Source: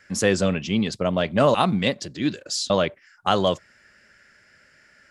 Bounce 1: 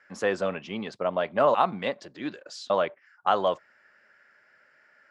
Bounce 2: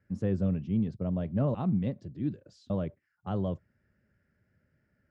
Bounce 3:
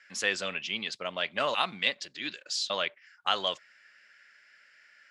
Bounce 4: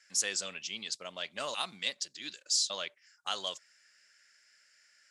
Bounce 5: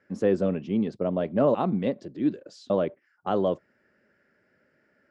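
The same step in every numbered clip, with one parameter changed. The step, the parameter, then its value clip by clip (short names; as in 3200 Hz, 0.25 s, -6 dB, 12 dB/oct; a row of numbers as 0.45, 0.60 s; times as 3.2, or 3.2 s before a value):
band-pass, frequency: 940, 100, 2700, 6800, 340 Hz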